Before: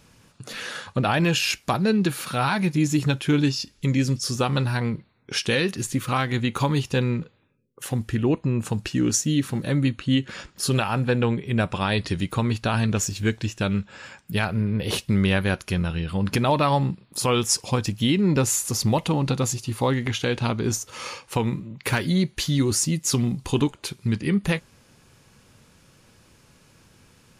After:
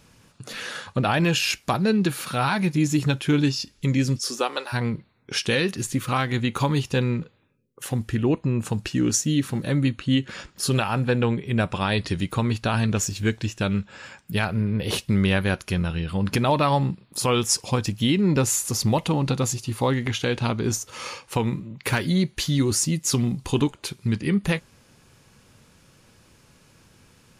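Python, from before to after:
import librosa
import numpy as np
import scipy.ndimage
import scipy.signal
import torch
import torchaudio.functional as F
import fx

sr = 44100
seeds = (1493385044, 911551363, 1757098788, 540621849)

y = fx.highpass(x, sr, hz=fx.line((4.17, 200.0), (4.72, 530.0)), slope=24, at=(4.17, 4.72), fade=0.02)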